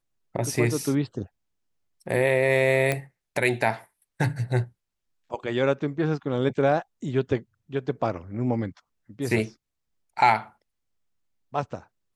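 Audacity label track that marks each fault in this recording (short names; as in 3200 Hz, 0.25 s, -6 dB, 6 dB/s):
2.920000	2.920000	pop -11 dBFS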